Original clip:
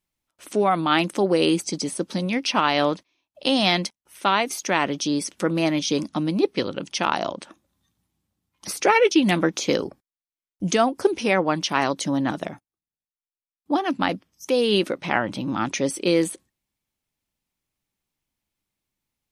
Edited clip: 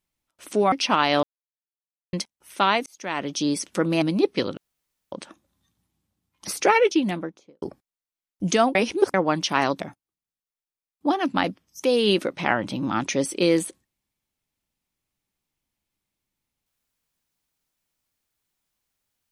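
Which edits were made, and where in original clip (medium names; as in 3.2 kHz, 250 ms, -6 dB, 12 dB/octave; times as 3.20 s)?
0.72–2.37 s: delete
2.88–3.78 s: mute
4.51–5.11 s: fade in
5.67–6.22 s: delete
6.77–7.32 s: room tone
8.81–9.82 s: studio fade out
10.95–11.34 s: reverse
12.00–12.45 s: delete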